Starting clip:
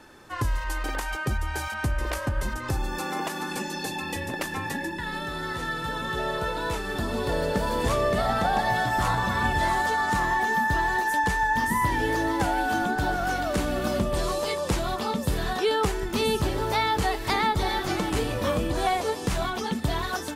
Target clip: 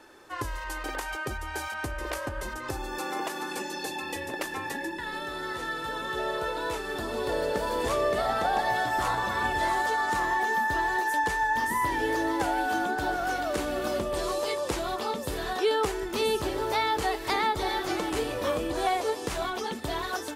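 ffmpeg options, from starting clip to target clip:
-af "lowshelf=f=260:t=q:w=1.5:g=-7.5,volume=-2.5dB"

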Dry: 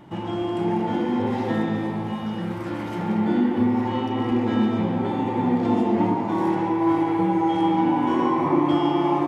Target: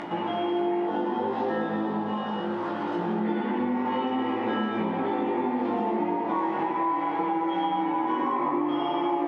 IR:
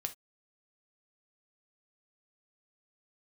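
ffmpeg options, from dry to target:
-filter_complex "[0:a]highpass=330,lowpass=2.9k,acompressor=mode=upward:threshold=-30dB:ratio=2.5,flanger=delay=17.5:depth=2.6:speed=0.65[a];[1:a]atrim=start_sample=2205,asetrate=23373,aresample=44100[b];[a][b]afir=irnorm=-1:irlink=0,acompressor=threshold=-28dB:ratio=6,asettb=1/sr,asplit=3[c][d][e];[c]atrim=end=0.874[f];[d]atrim=start=0.87:end=3.25,asetpts=PTS-STARTPTS,afade=t=in:d=0.004:c=qsin,afade=t=out:st=2.376:d=0.004:c=qsin,equalizer=f=2.2k:t=o:w=0.38:g=-12[g];[e]atrim=start=3.246[h];[f][g]acrossfade=d=0.004:c1=hsin:c2=qsin[i];[i][h]acrossfade=d=0.004:c1=qsin:c2=hsin,volume=4.5dB"

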